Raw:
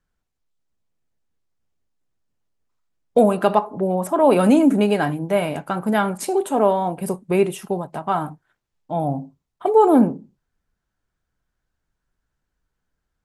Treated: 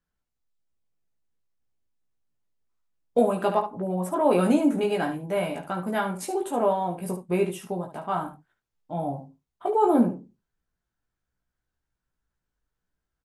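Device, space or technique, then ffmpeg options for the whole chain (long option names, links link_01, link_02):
slapback doubling: -filter_complex "[0:a]asplit=3[link_01][link_02][link_03];[link_02]adelay=17,volume=-3dB[link_04];[link_03]adelay=72,volume=-9dB[link_05];[link_01][link_04][link_05]amix=inputs=3:normalize=0,volume=-8dB"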